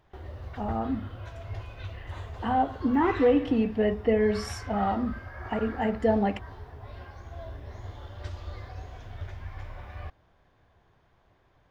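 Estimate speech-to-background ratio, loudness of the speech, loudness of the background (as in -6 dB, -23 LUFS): 14.0 dB, -27.0 LUFS, -41.0 LUFS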